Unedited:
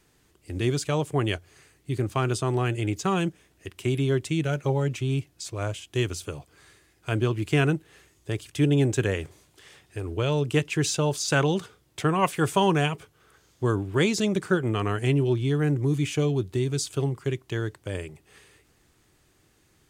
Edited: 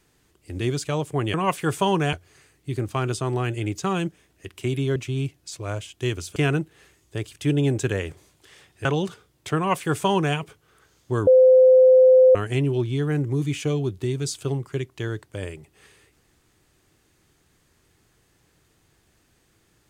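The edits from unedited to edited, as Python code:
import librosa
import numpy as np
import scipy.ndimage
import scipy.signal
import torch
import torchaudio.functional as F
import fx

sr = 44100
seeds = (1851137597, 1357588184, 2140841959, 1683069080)

y = fx.edit(x, sr, fx.cut(start_s=4.17, length_s=0.72),
    fx.cut(start_s=6.29, length_s=1.21),
    fx.cut(start_s=9.99, length_s=1.38),
    fx.duplicate(start_s=12.09, length_s=0.79, to_s=1.34),
    fx.bleep(start_s=13.79, length_s=1.08, hz=515.0, db=-9.5), tone=tone)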